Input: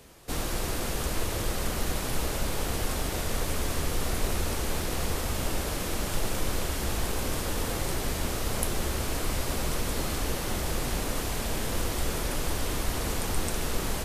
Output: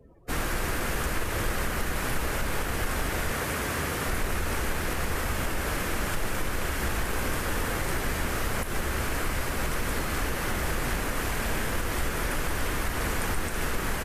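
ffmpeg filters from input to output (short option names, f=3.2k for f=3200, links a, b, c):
-filter_complex "[0:a]asettb=1/sr,asplit=3[a][b][c];[a]atrim=end=3.314[d];[b]atrim=start=3.31:end=4.08,asetpts=PTS-STARTPTS,afade=t=in:d=0.004:c=qsin,afade=t=out:st=0.766:d=0.004:c=qsin,highpass=77[e];[c]atrim=start=4.076[f];[d][e]acrossfade=d=0.004:c1=hsin:c2=qsin[g];[g][f]acrossfade=d=0.004:c1=qsin:c2=hsin,afftdn=nr=31:nf=-50,firequalizer=gain_entry='entry(700,0);entry(1600,8);entry(3700,-3);entry(13000,0)':delay=0.05:min_phase=1,alimiter=limit=-19dB:level=0:latency=1:release=143,asplit=2[h][i];[i]asoftclip=type=tanh:threshold=-27.5dB,volume=-11.5dB[j];[h][j]amix=inputs=2:normalize=0"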